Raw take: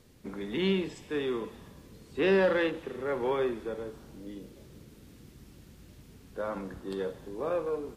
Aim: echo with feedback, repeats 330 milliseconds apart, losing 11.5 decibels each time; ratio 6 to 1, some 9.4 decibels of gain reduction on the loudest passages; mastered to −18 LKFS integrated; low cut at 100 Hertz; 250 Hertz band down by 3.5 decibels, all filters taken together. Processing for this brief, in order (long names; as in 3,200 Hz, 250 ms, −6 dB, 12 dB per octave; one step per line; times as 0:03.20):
high-pass filter 100 Hz
parametric band 250 Hz −5.5 dB
downward compressor 6 to 1, threshold −32 dBFS
repeating echo 330 ms, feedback 27%, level −11.5 dB
level +20.5 dB